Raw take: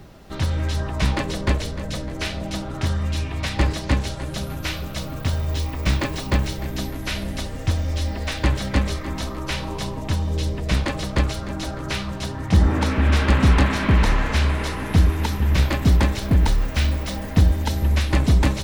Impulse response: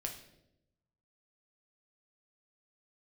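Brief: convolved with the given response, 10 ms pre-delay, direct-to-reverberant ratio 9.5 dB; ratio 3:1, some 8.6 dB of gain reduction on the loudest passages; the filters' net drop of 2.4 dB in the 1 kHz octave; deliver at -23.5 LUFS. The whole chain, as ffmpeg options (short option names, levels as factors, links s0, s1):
-filter_complex "[0:a]equalizer=f=1000:t=o:g=-3,acompressor=threshold=0.0708:ratio=3,asplit=2[s0][s1];[1:a]atrim=start_sample=2205,adelay=10[s2];[s1][s2]afir=irnorm=-1:irlink=0,volume=0.355[s3];[s0][s3]amix=inputs=2:normalize=0,volume=1.58"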